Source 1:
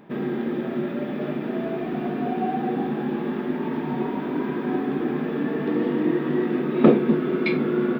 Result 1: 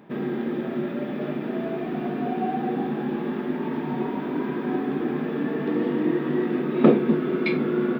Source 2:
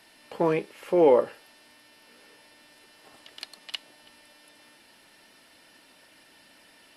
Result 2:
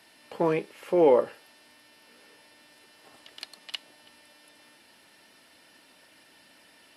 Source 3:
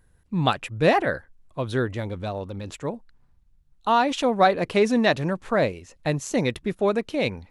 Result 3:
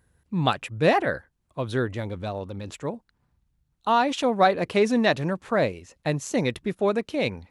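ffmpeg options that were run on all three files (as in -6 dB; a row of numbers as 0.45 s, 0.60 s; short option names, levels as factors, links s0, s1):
-af "highpass=57,volume=0.891"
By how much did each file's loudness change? -1.0 LU, -1.0 LU, -1.0 LU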